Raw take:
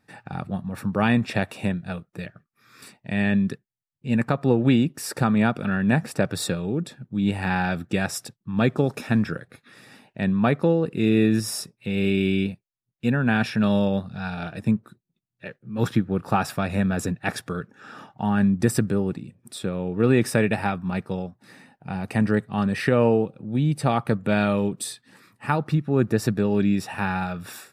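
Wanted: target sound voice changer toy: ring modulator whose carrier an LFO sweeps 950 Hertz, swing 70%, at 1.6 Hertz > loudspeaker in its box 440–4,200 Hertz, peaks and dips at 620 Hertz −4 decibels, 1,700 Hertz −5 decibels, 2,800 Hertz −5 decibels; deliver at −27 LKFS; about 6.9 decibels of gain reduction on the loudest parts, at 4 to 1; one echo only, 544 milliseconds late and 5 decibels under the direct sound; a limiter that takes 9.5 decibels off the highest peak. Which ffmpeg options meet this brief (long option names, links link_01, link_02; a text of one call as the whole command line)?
ffmpeg -i in.wav -af "acompressor=threshold=-22dB:ratio=4,alimiter=limit=-17.5dB:level=0:latency=1,aecho=1:1:544:0.562,aeval=exprs='val(0)*sin(2*PI*950*n/s+950*0.7/1.6*sin(2*PI*1.6*n/s))':channel_layout=same,highpass=440,equalizer=frequency=620:width_type=q:width=4:gain=-4,equalizer=frequency=1700:width_type=q:width=4:gain=-5,equalizer=frequency=2800:width_type=q:width=4:gain=-5,lowpass=frequency=4200:width=0.5412,lowpass=frequency=4200:width=1.3066,volume=7dB" out.wav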